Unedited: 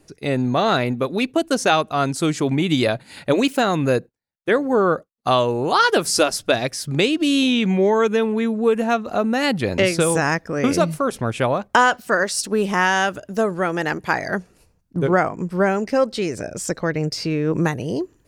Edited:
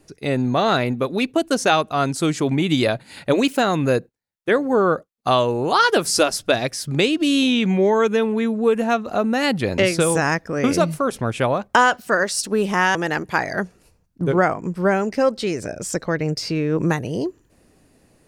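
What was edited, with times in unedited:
0:12.95–0:13.70: remove

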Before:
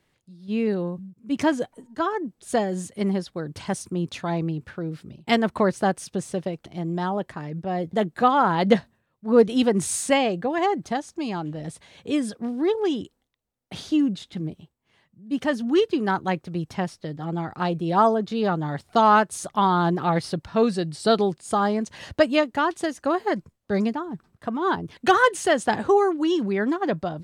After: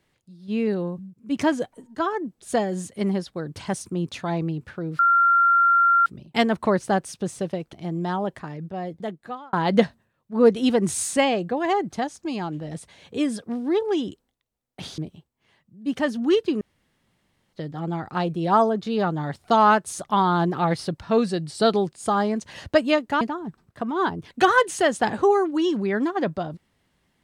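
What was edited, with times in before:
0:04.99: insert tone 1,380 Hz −14 dBFS 1.07 s
0:07.27–0:08.46: fade out
0:13.91–0:14.43: remove
0:16.06–0:16.98: fill with room tone
0:22.66–0:23.87: remove

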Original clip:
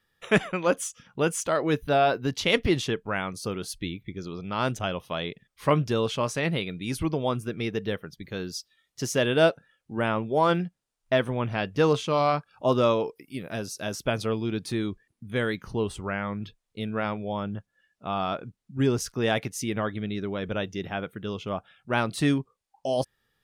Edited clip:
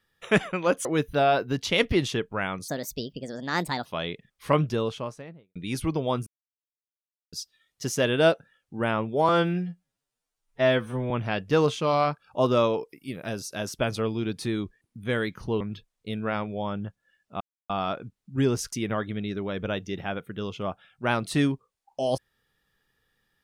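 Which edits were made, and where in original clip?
0:00.85–0:01.59: remove
0:03.42–0:05.03: play speed 137%
0:05.72–0:06.73: fade out and dull
0:07.44–0:08.50: silence
0:10.46–0:11.37: time-stretch 2×
0:15.87–0:16.31: remove
0:18.11: splice in silence 0.29 s
0:19.14–0:19.59: remove

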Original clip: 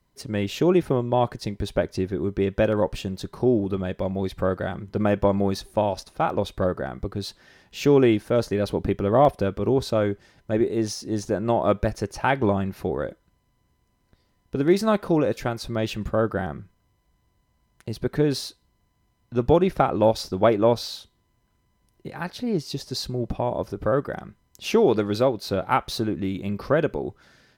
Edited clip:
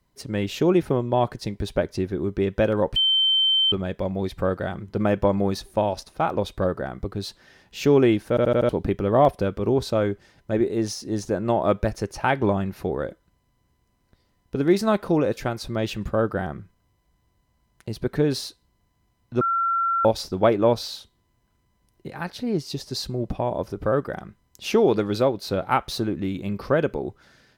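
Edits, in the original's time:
0:02.96–0:03.72: beep over 3,100 Hz −16.5 dBFS
0:08.29: stutter in place 0.08 s, 5 plays
0:19.41–0:20.05: beep over 1,360 Hz −19.5 dBFS

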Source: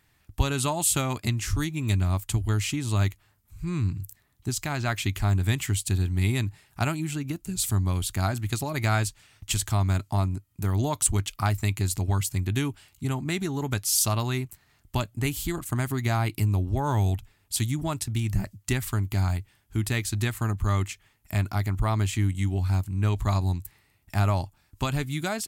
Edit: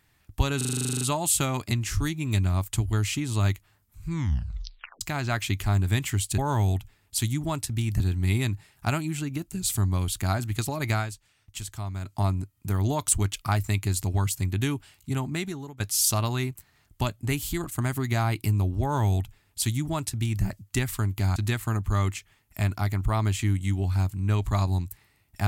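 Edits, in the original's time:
0:00.57: stutter 0.04 s, 12 plays
0:03.65: tape stop 0.92 s
0:08.85–0:10.12: duck −9.5 dB, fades 0.16 s
0:13.23–0:13.74: fade out linear, to −23.5 dB
0:16.76–0:18.38: duplicate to 0:05.94
0:19.30–0:20.10: remove

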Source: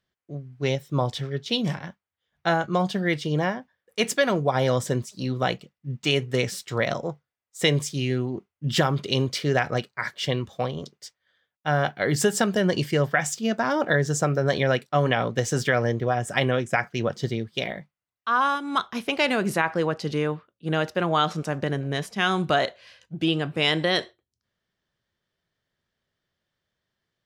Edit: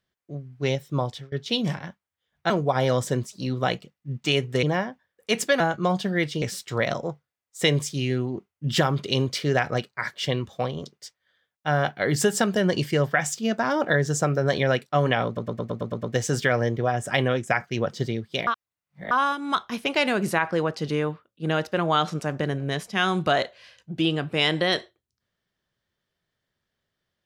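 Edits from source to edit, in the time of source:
0:00.79–0:01.32: fade out equal-power, to −23.5 dB
0:02.50–0:03.32: swap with 0:04.29–0:06.42
0:15.26: stutter 0.11 s, 8 plays
0:17.70–0:18.34: reverse

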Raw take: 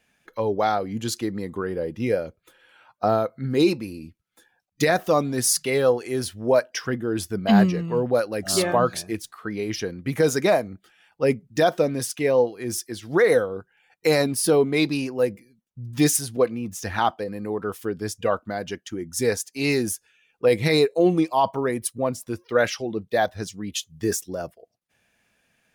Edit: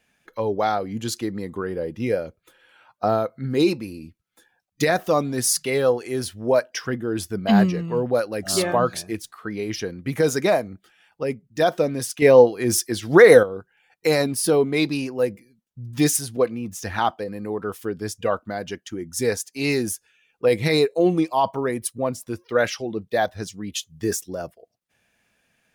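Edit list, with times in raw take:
0:11.23–0:11.60: clip gain −5.5 dB
0:12.22–0:13.43: clip gain +7.5 dB

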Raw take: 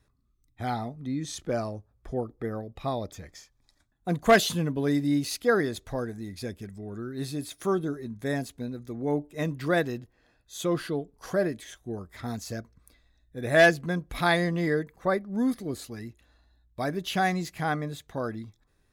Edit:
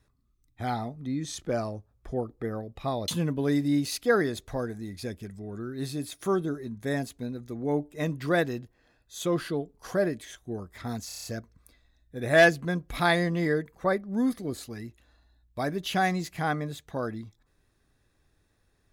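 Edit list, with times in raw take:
0:03.08–0:04.47: remove
0:12.46: stutter 0.03 s, 7 plays

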